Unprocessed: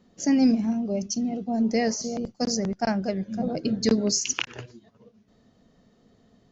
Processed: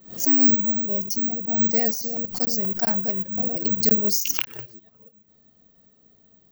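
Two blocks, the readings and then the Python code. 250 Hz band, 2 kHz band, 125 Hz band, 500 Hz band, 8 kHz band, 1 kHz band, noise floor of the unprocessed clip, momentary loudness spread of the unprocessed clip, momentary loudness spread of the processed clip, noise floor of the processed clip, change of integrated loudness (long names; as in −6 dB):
−4.0 dB, −2.5 dB, −3.5 dB, −4.0 dB, can't be measured, −3.5 dB, −62 dBFS, 8 LU, 9 LU, −59 dBFS, +5.5 dB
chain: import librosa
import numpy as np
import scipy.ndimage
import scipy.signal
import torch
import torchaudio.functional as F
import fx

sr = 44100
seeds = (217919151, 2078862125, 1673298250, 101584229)

y = (np.kron(x[::2], np.eye(2)[0]) * 2)[:len(x)]
y = fx.high_shelf(y, sr, hz=5200.0, db=5.0)
y = fx.pre_swell(y, sr, db_per_s=130.0)
y = F.gain(torch.from_numpy(y), -4.0).numpy()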